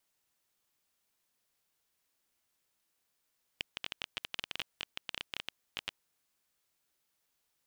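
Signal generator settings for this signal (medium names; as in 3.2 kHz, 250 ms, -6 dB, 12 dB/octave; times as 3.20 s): random clicks 14 per s -18.5 dBFS 2.51 s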